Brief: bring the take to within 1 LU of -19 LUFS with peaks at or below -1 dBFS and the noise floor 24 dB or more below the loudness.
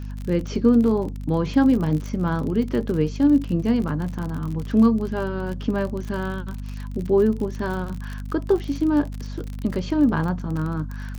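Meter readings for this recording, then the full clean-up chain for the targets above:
tick rate 46 per s; hum 50 Hz; highest harmonic 250 Hz; hum level -29 dBFS; loudness -23.0 LUFS; peak level -6.0 dBFS; loudness target -19.0 LUFS
-> de-click; hum notches 50/100/150/200/250 Hz; trim +4 dB

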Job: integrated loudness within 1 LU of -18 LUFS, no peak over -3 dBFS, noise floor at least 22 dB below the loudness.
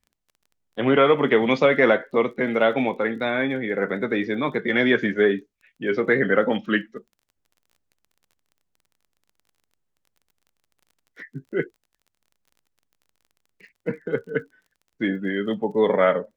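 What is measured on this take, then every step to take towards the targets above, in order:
tick rate 27 per s; loudness -22.0 LUFS; peak level -5.0 dBFS; loudness target -18.0 LUFS
-> de-click; trim +4 dB; peak limiter -3 dBFS

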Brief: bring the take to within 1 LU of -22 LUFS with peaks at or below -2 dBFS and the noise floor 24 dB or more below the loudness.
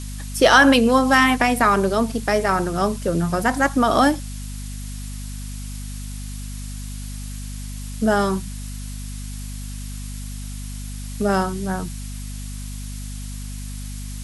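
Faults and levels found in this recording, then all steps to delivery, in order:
hum 50 Hz; highest harmonic 250 Hz; hum level -29 dBFS; noise floor -31 dBFS; noise floor target -43 dBFS; loudness -18.5 LUFS; peak level -2.0 dBFS; loudness target -22.0 LUFS
-> de-hum 50 Hz, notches 5; noise print and reduce 12 dB; trim -3.5 dB

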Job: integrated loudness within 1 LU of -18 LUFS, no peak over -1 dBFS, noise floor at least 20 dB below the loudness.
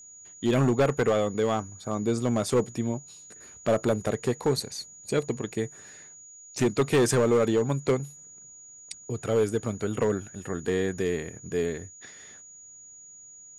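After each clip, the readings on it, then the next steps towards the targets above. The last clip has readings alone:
clipped samples 1.1%; clipping level -17.0 dBFS; steady tone 6.8 kHz; tone level -46 dBFS; loudness -27.0 LUFS; peak level -17.0 dBFS; loudness target -18.0 LUFS
-> clip repair -17 dBFS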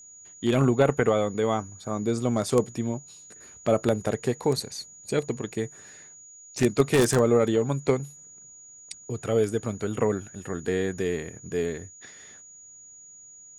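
clipped samples 0.0%; steady tone 6.8 kHz; tone level -46 dBFS
-> band-stop 6.8 kHz, Q 30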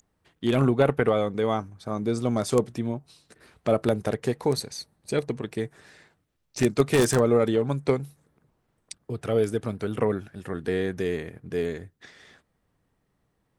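steady tone not found; loudness -26.0 LUFS; peak level -8.0 dBFS; loudness target -18.0 LUFS
-> trim +8 dB; peak limiter -1 dBFS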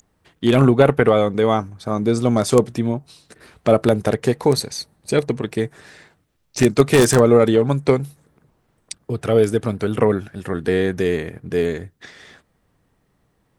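loudness -18.5 LUFS; peak level -1.0 dBFS; noise floor -66 dBFS

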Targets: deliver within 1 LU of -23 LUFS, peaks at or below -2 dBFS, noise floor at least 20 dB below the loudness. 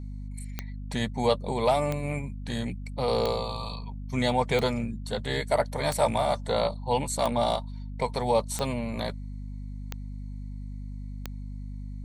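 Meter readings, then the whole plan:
clicks found 9; hum 50 Hz; highest harmonic 250 Hz; hum level -34 dBFS; loudness -28.5 LUFS; peak level -10.5 dBFS; loudness target -23.0 LUFS
-> de-click; hum notches 50/100/150/200/250 Hz; trim +5.5 dB

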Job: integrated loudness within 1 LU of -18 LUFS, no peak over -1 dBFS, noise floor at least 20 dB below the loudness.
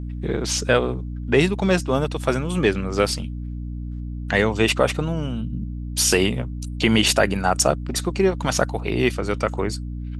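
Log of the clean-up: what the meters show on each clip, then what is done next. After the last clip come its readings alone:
hum 60 Hz; highest harmonic 300 Hz; hum level -27 dBFS; loudness -21.5 LUFS; peak level -2.5 dBFS; loudness target -18.0 LUFS
-> hum notches 60/120/180/240/300 Hz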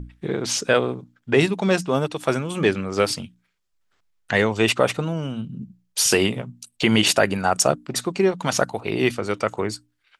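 hum not found; loudness -22.0 LUFS; peak level -2.5 dBFS; loudness target -18.0 LUFS
-> trim +4 dB; peak limiter -1 dBFS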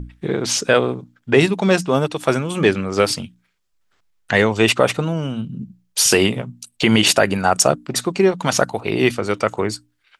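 loudness -18.0 LUFS; peak level -1.0 dBFS; noise floor -67 dBFS

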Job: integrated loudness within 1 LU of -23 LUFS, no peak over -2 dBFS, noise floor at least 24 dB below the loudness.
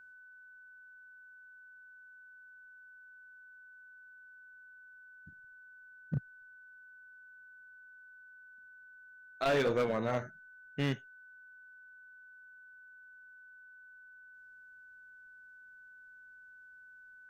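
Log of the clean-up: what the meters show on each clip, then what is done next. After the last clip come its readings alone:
clipped samples 0.4%; clipping level -25.5 dBFS; steady tone 1.5 kHz; tone level -53 dBFS; loudness -34.0 LUFS; peak level -25.5 dBFS; loudness target -23.0 LUFS
-> clip repair -25.5 dBFS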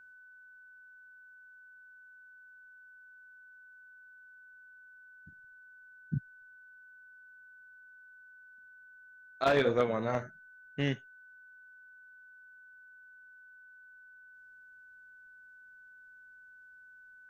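clipped samples 0.0%; steady tone 1.5 kHz; tone level -53 dBFS
-> band-stop 1.5 kHz, Q 30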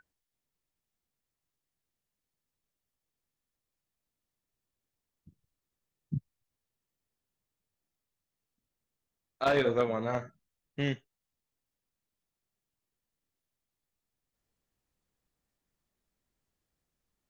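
steady tone not found; loudness -32.0 LUFS; peak level -16.0 dBFS; loudness target -23.0 LUFS
-> trim +9 dB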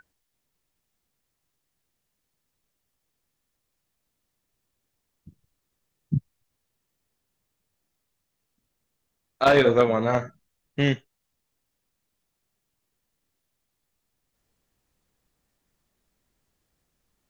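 loudness -23.0 LUFS; peak level -7.0 dBFS; noise floor -79 dBFS

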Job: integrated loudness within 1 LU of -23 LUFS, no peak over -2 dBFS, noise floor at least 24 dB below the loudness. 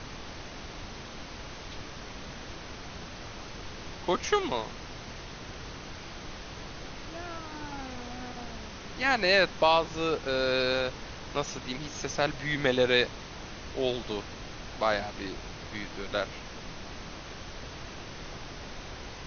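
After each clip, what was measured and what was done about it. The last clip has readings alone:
noise floor -43 dBFS; noise floor target -57 dBFS; loudness -32.5 LUFS; peak level -10.0 dBFS; loudness target -23.0 LUFS
-> noise print and reduce 14 dB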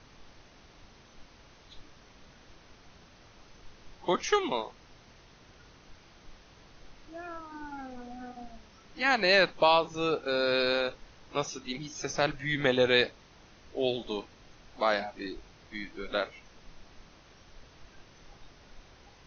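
noise floor -57 dBFS; loudness -29.0 LUFS; peak level -10.0 dBFS; loudness target -23.0 LUFS
-> trim +6 dB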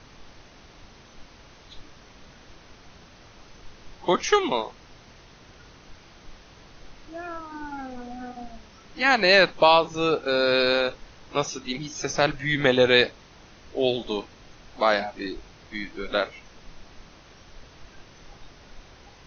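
loudness -23.0 LUFS; peak level -4.0 dBFS; noise floor -51 dBFS

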